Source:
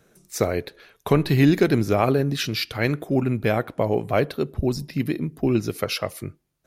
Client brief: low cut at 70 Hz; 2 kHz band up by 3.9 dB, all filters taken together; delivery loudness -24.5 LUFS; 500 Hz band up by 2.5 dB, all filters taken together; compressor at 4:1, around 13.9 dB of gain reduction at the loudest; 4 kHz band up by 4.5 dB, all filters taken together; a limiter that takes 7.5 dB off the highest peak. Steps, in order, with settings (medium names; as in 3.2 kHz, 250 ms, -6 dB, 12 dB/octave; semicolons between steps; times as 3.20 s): high-pass 70 Hz; peaking EQ 500 Hz +3 dB; peaking EQ 2 kHz +3.5 dB; peaking EQ 4 kHz +4.5 dB; compression 4:1, threshold -28 dBFS; trim +9 dB; peak limiter -12 dBFS